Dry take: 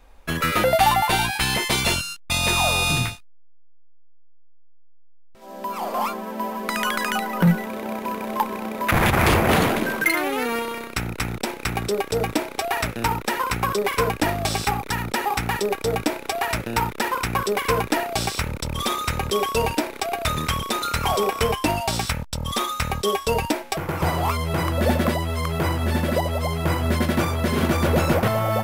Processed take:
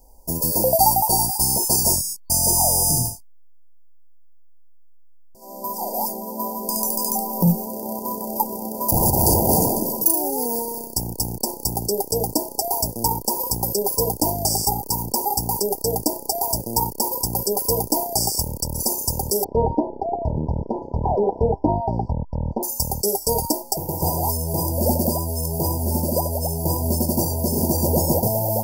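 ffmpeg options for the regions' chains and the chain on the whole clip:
ffmpeg -i in.wav -filter_complex "[0:a]asettb=1/sr,asplit=3[link_01][link_02][link_03];[link_01]atrim=end=19.444[link_04];[link_02]atrim=start=19.44:end=22.63,asetpts=PTS-STARTPTS,afade=type=in:duration=0.004:curve=qsin,afade=type=out:start_time=3.186:duration=0.004:curve=qsin,lowpass=frequency=2100:width=0.5412,lowpass=frequency=2100:width=1.3066,tiltshelf=frequency=1400:gain=4.5[link_05];[link_03]atrim=start=22.626[link_06];[link_04][link_05]acrossfade=duration=0.004:curve1=hsin:curve2=qsin[link_07];[link_07][link_06]acrossfade=duration=0.004:curve1=qsin:curve2=hsin,aemphasis=mode=production:type=50fm,afftfilt=real='re*(1-between(b*sr/4096,1000,4500))':imag='im*(1-between(b*sr/4096,1000,4500))':win_size=4096:overlap=0.75" out.wav

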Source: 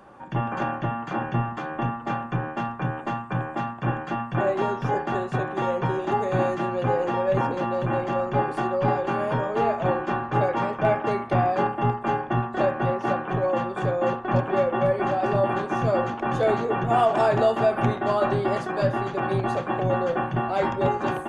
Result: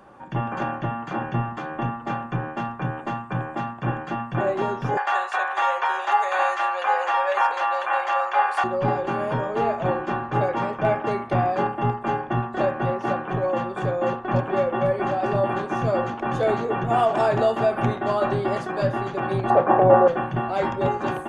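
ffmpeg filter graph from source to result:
ffmpeg -i in.wav -filter_complex "[0:a]asettb=1/sr,asplit=3[link_01][link_02][link_03];[link_01]atrim=end=4.974[link_04];[link_02]atrim=start=4.97:end=8.64,asetpts=PTS-STARTPTS,afade=type=in:duration=0.004:curve=qsin,afade=type=out:start_time=3.666:duration=0.004:curve=qsin,highpass=frequency=720:width=0.5412,highpass=frequency=720:width=1.3066,equalizer=frequency=1700:width_type=o:width=1.7:gain=3,acontrast=58[link_05];[link_03]atrim=start=8.636[link_06];[link_04][link_05]acrossfade=duration=0.004:curve1=hsin:curve2=qsin[link_07];[link_07][link_06]acrossfade=duration=0.004:curve1=qsin:curve2=hsin,asettb=1/sr,asplit=3[link_08][link_09][link_10];[link_08]atrim=end=19.504[link_11];[link_09]atrim=start=19.5:end=20.08,asetpts=PTS-STARTPTS,afade=type=in:duration=0.004:curve=qsin,afade=type=out:start_time=0.576:duration=0.004:curve=qsin,lowpass=2300,equalizer=frequency=670:width_type=o:width=2.3:gain=11.5[link_12];[link_10]atrim=start=20.076[link_13];[link_11][link_12]acrossfade=duration=0.004:curve1=hsin:curve2=qsin[link_14];[link_14][link_13]acrossfade=duration=0.004:curve1=qsin:curve2=hsin" out.wav

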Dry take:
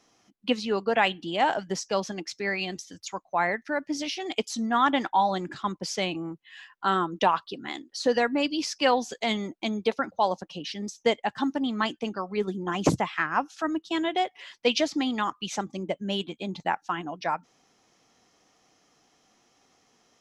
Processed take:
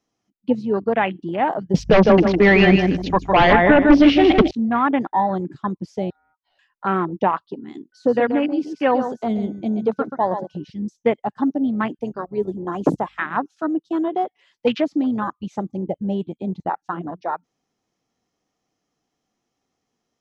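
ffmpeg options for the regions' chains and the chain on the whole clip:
ffmpeg -i in.wav -filter_complex "[0:a]asettb=1/sr,asplit=3[link_01][link_02][link_03];[link_01]atrim=end=1.744[link_04];[link_02]atrim=start=1.74:end=4.51,asetpts=PTS-STARTPTS,afade=type=in:duration=0.004:curve=qsin,afade=type=out:start_time=2.766:duration=0.004:curve=qsin,asplit=2[link_05][link_06];[link_06]adelay=155,lowpass=frequency=4400:poles=1,volume=-5.5dB,asplit=2[link_07][link_08];[link_08]adelay=155,lowpass=frequency=4400:poles=1,volume=0.3,asplit=2[link_09][link_10];[link_10]adelay=155,lowpass=frequency=4400:poles=1,volume=0.3,asplit=2[link_11][link_12];[link_12]adelay=155,lowpass=frequency=4400:poles=1,volume=0.3[link_13];[link_05][link_07][link_09][link_11][link_13]amix=inputs=5:normalize=0,atrim=end_sample=122157,aeval=exprs='0.266*sin(PI/2*3.55*val(0)/0.266)':channel_layout=same,aeval=exprs='val(0)+0.00631*(sin(2*PI*50*n/s)+sin(2*PI*2*50*n/s)/2+sin(2*PI*3*50*n/s)/3+sin(2*PI*4*50*n/s)/4+sin(2*PI*5*50*n/s)/5)':channel_layout=same[link_14];[link_03]atrim=start=4.506[link_15];[link_04][link_14]acrossfade=duration=0.004:curve1=hsin:curve2=qsin[link_16];[link_16][link_15]acrossfade=duration=0.004:curve1=qsin:curve2=hsin,asettb=1/sr,asplit=3[link_17][link_18][link_19];[link_17]atrim=end=6.104[link_20];[link_18]atrim=start=6.1:end=6.59,asetpts=PTS-STARTPTS,afade=type=in:duration=0.004:curve=qsin,afade=type=out:start_time=0.486:duration=0.004:curve=qsin,equalizer=frequency=6500:width=1.3:gain=-12,acompressor=threshold=-47dB:ratio=8:attack=3.2:release=140:knee=1:detection=peak,aeval=exprs='val(0)*sin(2*PI*1100*n/s)':channel_layout=same[link_21];[link_19]atrim=start=6.586[link_22];[link_20][link_21]acrossfade=duration=0.004:curve1=hsin:curve2=qsin[link_23];[link_23][link_22]acrossfade=duration=0.004:curve1=qsin:curve2=hsin,asettb=1/sr,asplit=3[link_24][link_25][link_26];[link_24]atrim=end=7.924[link_27];[link_25]atrim=start=7.92:end=10.7,asetpts=PTS-STARTPTS,afade=type=in:duration=0.004:curve=qsin,afade=type=out:start_time=2.776:duration=0.004:curve=qsin,aeval=exprs='val(0)+0.00447*sin(2*PI*1500*n/s)':channel_layout=same,aecho=1:1:131:0.398,atrim=end_sample=122598[link_28];[link_26]atrim=start=10.696[link_29];[link_27][link_28]acrossfade=duration=0.004:curve1=hsin:curve2=qsin[link_30];[link_30][link_29]acrossfade=duration=0.004:curve1=qsin:curve2=hsin,asettb=1/sr,asplit=3[link_31][link_32][link_33];[link_31]atrim=end=11.994[link_34];[link_32]atrim=start=11.99:end=13.26,asetpts=PTS-STARTPTS,afade=type=in:duration=0.004:curve=qsin,afade=type=out:start_time=1.266:duration=0.004:curve=qsin,highpass=250,aeval=exprs='val(0)+0.00126*(sin(2*PI*50*n/s)+sin(2*PI*2*50*n/s)/2+sin(2*PI*3*50*n/s)/3+sin(2*PI*4*50*n/s)/4+sin(2*PI*5*50*n/s)/5)':channel_layout=same,highshelf=frequency=6700:gain=10.5[link_35];[link_33]atrim=start=13.256[link_36];[link_34][link_35]acrossfade=duration=0.004:curve1=hsin:curve2=qsin[link_37];[link_37][link_36]acrossfade=duration=0.004:curve1=qsin:curve2=hsin,afwtdn=0.0355,acrossover=split=3200[link_38][link_39];[link_39]acompressor=threshold=-51dB:ratio=4:attack=1:release=60[link_40];[link_38][link_40]amix=inputs=2:normalize=0,lowshelf=frequency=430:gain=8.5,volume=1.5dB" out.wav

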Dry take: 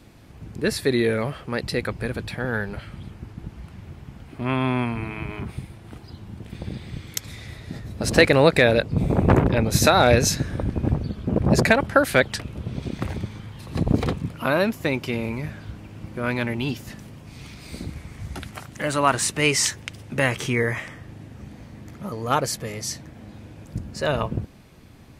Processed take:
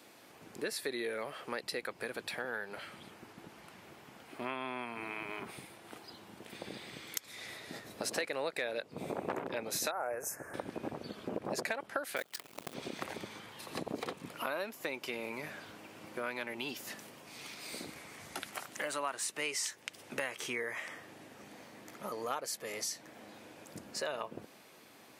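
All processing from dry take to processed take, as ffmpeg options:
ffmpeg -i in.wav -filter_complex "[0:a]asettb=1/sr,asplit=3[link_01][link_02][link_03];[link_01]atrim=end=9.914[link_04];[link_02]atrim=start=9.91:end=10.54,asetpts=PTS-STARTPTS,afade=type=in:duration=0.004:curve=qsin,afade=type=out:start_time=0.626:duration=0.004:curve=qsin,asuperstop=centerf=3700:order=4:qfactor=0.53,equalizer=frequency=220:width_type=o:width=1.4:gain=-11.5[link_05];[link_03]atrim=start=10.536[link_06];[link_04][link_05]acrossfade=duration=0.004:curve1=hsin:curve2=qsin[link_07];[link_07][link_06]acrossfade=duration=0.004:curve1=qsin:curve2=hsin,asettb=1/sr,asplit=3[link_08][link_09][link_10];[link_08]atrim=end=12.164[link_11];[link_09]atrim=start=12.16:end=12.74,asetpts=PTS-STARTPTS,afade=type=in:duration=0.004:curve=qsin,afade=type=out:start_time=0.576:duration=0.004:curve=qsin,acrusher=bits=5:dc=4:mix=0:aa=0.000001,aeval=exprs='val(0)*sin(2*PI*22*n/s)':channel_layout=same[link_12];[link_10]atrim=start=12.736[link_13];[link_11][link_12]acrossfade=duration=0.004:curve1=hsin:curve2=qsin[link_14];[link_14][link_13]acrossfade=duration=0.004:curve1=qsin:curve2=hsin,highpass=430,highshelf=frequency=10000:gain=6,acompressor=threshold=-34dB:ratio=4,volume=-2dB" out.wav

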